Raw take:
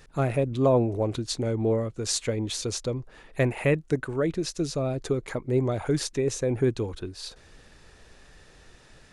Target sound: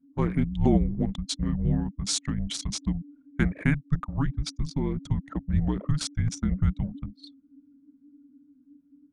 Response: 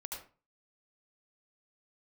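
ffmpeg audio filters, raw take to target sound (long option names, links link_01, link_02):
-af "anlmdn=15.8,afreqshift=-300"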